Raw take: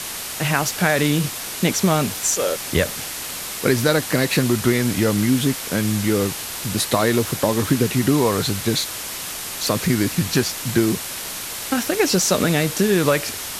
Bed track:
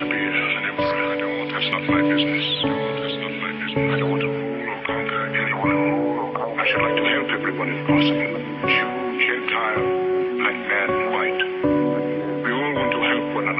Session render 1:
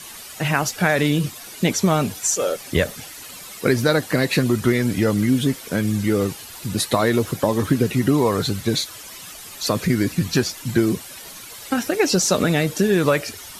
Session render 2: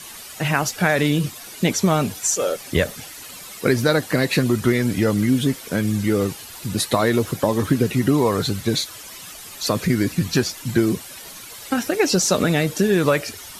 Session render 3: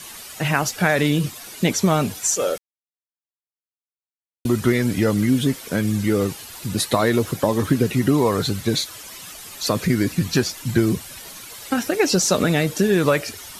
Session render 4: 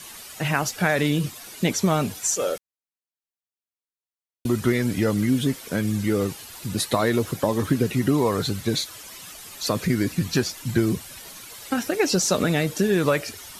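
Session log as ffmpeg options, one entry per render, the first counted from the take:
-af "afftdn=nr=12:nf=-30"
-af anull
-filter_complex "[0:a]asettb=1/sr,asplit=3[s0][s1][s2];[s0]atrim=end=10.514[s3];[s1]atrim=start=10.51:end=11.23,asetpts=PTS-STARTPTS,afade=t=in:d=0.004:c=qsin,afade=t=out:st=0.716:d=0.004:c=qsin,asubboost=boost=8:cutoff=200[s4];[s2]atrim=start=11.226[s5];[s3][s4]acrossfade=d=0.004:c1=hsin:c2=qsin[s6];[s6][s5]acrossfade=d=0.004:c1=qsin:c2=hsin,asplit=3[s7][s8][s9];[s7]atrim=end=2.58,asetpts=PTS-STARTPTS,afade=t=out:st=2.576:d=0.004:c=hsin[s10];[s8]atrim=start=2.58:end=4.45,asetpts=PTS-STARTPTS,volume=0[s11];[s9]atrim=start=4.45,asetpts=PTS-STARTPTS,afade=t=in:d=0.004:c=hsin[s12];[s10][s11][s12]concat=n=3:v=0:a=1"
-af "volume=0.708"

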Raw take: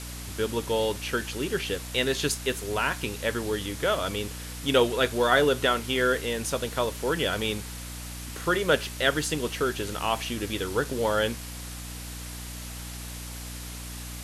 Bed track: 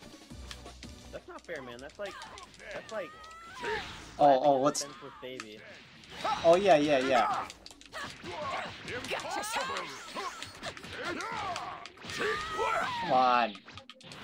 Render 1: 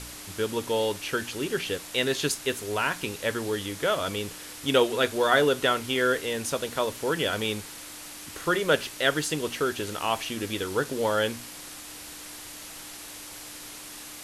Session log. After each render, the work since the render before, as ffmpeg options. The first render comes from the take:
-af "bandreject=f=60:t=h:w=4,bandreject=f=120:t=h:w=4,bandreject=f=180:t=h:w=4,bandreject=f=240:t=h:w=4"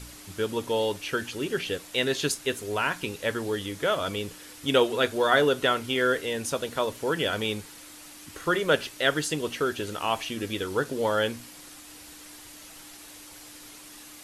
-af "afftdn=nr=6:nf=-42"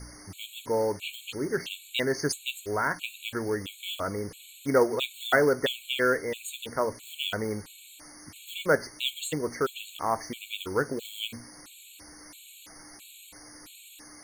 -af "acrusher=bits=4:mode=log:mix=0:aa=0.000001,afftfilt=real='re*gt(sin(2*PI*1.5*pts/sr)*(1-2*mod(floor(b*sr/1024/2200),2)),0)':imag='im*gt(sin(2*PI*1.5*pts/sr)*(1-2*mod(floor(b*sr/1024/2200),2)),0)':win_size=1024:overlap=0.75"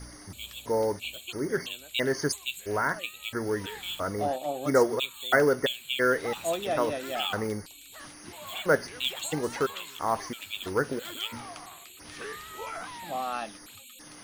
-filter_complex "[1:a]volume=0.422[s0];[0:a][s0]amix=inputs=2:normalize=0"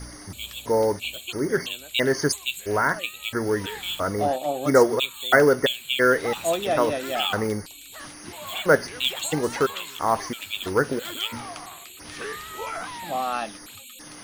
-af "volume=1.88"

